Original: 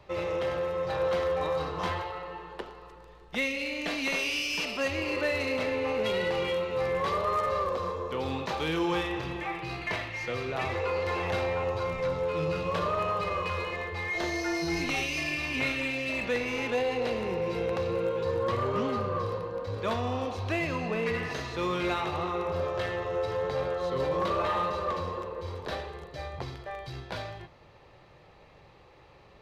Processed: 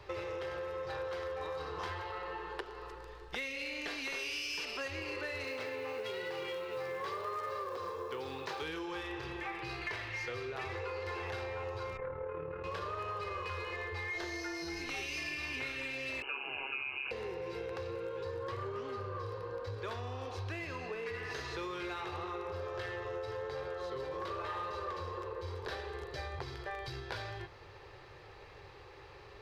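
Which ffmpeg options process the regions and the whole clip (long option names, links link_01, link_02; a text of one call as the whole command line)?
ffmpeg -i in.wav -filter_complex "[0:a]asettb=1/sr,asplit=3[link_01][link_02][link_03];[link_01]atrim=end=5.444[link_04];[link_02]atrim=start=5.44:end=8.62,asetpts=PTS-STARTPTS,afade=type=in:duration=0.004:curve=qsin,afade=type=out:start_time=3.176:duration=0.004:curve=qsin,highpass=frequency=110:width=0.5412,highpass=frequency=110:width=1.3066,acrusher=bits=8:mode=log:mix=0:aa=0.000001[link_05];[link_03]atrim=start=8.616[link_06];[link_04][link_05]acrossfade=duration=0.004:curve1=hsin:curve2=qsin[link_07];[link_07][link_06]acrossfade=duration=0.004:curve1=qsin:curve2=hsin,asettb=1/sr,asplit=3[link_08][link_09][link_10];[link_08]atrim=end=11.974[link_11];[link_09]atrim=start=11.97:end=12.64,asetpts=PTS-STARTPTS,afade=type=in:duration=0.004:curve=qsin,afade=type=out:start_time=0.666:duration=0.004:curve=qsin,lowpass=frequency=1900:width=0.5412,lowpass=frequency=1900:width=1.3066,tremolo=f=37:d=0.519[link_12];[link_10]atrim=start=12.636[link_13];[link_11][link_12]acrossfade=duration=0.004:curve1=hsin:curve2=qsin[link_14];[link_14][link_13]acrossfade=duration=0.004:curve1=qsin:curve2=hsin,asettb=1/sr,asplit=3[link_15][link_16][link_17];[link_15]atrim=end=16.224[link_18];[link_16]atrim=start=16.22:end=17.11,asetpts=PTS-STARTPTS,afade=type=in:duration=0.004:curve=qsin,afade=type=out:start_time=0.886:duration=0.004:curve=qsin,lowpass=frequency=2600:width_type=q:width=0.5098,lowpass=frequency=2600:width_type=q:width=0.6013,lowpass=frequency=2600:width_type=q:width=0.9,lowpass=frequency=2600:width_type=q:width=2.563,afreqshift=-3000,aeval=exprs='val(0)*sin(2*PI*68*n/s)':channel_layout=same,asuperstop=centerf=1900:order=4:qfactor=5.3[link_19];[link_17]atrim=start=17.106[link_20];[link_18][link_19]acrossfade=duration=0.004:curve1=hsin:curve2=qsin[link_21];[link_21][link_20]acrossfade=duration=0.004:curve1=qsin:curve2=hsin,equalizer=frequency=100:width_type=o:width=0.33:gain=5,equalizer=frequency=400:width_type=o:width=0.33:gain=7,equalizer=frequency=630:width_type=o:width=0.33:gain=-6,equalizer=frequency=1600:width_type=o:width=0.33:gain=5,equalizer=frequency=5000:width_type=o:width=0.33:gain=4,acompressor=threshold=-39dB:ratio=6,equalizer=frequency=200:width_type=o:width=0.86:gain=-13.5,volume=2.5dB" out.wav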